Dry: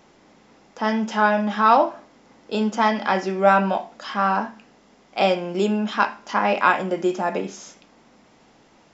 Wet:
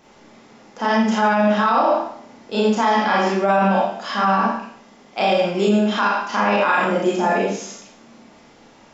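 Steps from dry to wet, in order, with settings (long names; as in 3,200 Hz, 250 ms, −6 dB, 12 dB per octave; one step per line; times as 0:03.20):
four-comb reverb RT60 0.6 s, combs from 27 ms, DRR −5 dB
brickwall limiter −8.5 dBFS, peak gain reduction 11 dB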